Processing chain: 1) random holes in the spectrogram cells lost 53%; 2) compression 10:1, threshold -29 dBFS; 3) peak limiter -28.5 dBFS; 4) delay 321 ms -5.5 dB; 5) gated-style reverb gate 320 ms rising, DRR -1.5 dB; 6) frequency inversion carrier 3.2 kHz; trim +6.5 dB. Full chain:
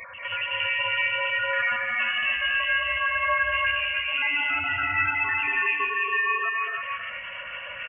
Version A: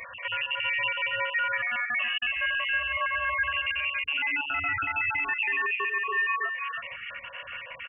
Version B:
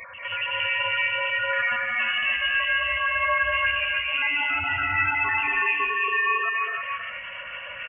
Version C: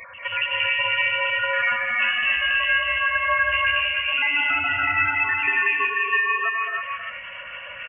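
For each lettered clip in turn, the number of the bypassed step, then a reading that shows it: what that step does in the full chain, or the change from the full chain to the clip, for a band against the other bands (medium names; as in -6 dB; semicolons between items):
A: 5, loudness change -3.0 LU; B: 2, mean gain reduction 7.0 dB; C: 3, mean gain reduction 2.0 dB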